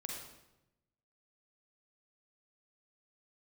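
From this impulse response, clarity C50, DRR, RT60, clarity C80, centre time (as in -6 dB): 1.0 dB, -1.0 dB, 0.90 s, 4.0 dB, 56 ms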